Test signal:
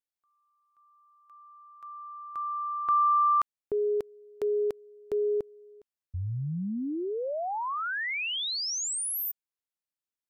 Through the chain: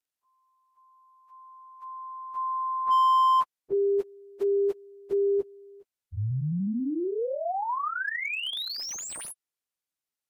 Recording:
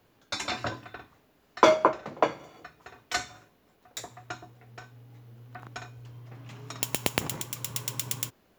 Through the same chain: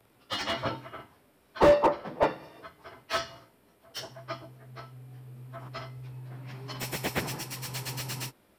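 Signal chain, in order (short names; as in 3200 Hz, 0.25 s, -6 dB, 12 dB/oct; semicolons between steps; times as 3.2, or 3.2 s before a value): inharmonic rescaling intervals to 92%; slew limiter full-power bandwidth 72 Hz; gain +4 dB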